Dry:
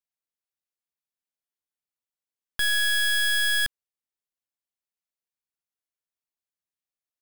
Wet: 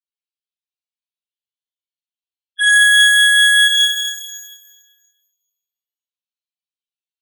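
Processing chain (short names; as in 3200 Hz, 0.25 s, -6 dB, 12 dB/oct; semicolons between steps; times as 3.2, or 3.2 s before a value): weighting filter D; sample leveller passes 3; loudest bins only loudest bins 8; shimmer reverb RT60 1.4 s, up +12 st, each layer -8 dB, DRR -10 dB; gain -4.5 dB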